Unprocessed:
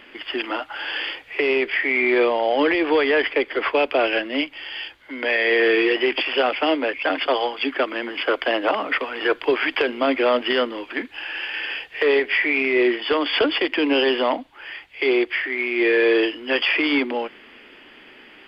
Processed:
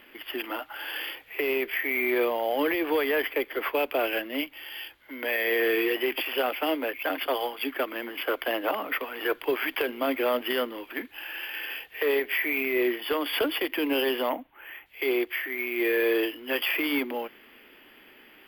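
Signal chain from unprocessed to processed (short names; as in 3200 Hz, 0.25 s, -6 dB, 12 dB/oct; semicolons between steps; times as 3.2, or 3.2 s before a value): 14.29–14.86 LPF 2900 Hz 24 dB/oct; sample-and-hold 3×; gain -7 dB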